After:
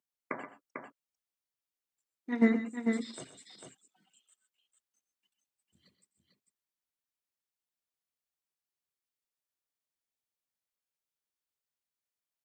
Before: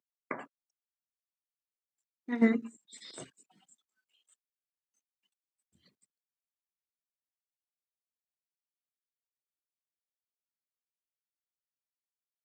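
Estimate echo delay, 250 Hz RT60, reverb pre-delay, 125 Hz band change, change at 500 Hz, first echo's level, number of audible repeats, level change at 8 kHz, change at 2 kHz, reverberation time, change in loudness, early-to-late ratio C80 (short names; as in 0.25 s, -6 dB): 90 ms, none, none, +1.5 dB, +1.0 dB, -18.5 dB, 3, +1.5 dB, +1.5 dB, none, -0.5 dB, none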